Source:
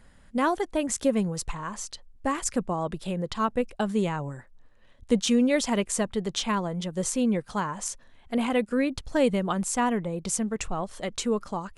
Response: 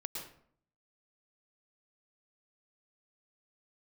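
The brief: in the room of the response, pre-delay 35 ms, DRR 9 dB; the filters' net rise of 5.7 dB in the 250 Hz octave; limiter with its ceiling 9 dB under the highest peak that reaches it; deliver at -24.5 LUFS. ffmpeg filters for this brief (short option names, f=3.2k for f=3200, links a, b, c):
-filter_complex "[0:a]equalizer=f=250:t=o:g=6.5,alimiter=limit=-16dB:level=0:latency=1,asplit=2[a][b];[1:a]atrim=start_sample=2205,adelay=35[c];[b][c]afir=irnorm=-1:irlink=0,volume=-8.5dB[d];[a][d]amix=inputs=2:normalize=0,volume=1.5dB"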